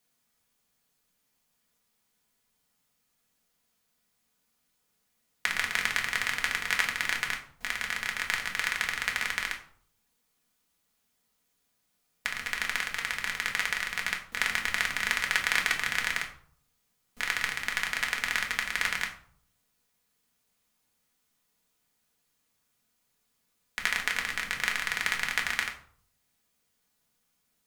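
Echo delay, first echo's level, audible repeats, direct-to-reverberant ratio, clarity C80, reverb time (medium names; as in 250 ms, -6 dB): no echo, no echo, no echo, 0.5 dB, 13.0 dB, 0.55 s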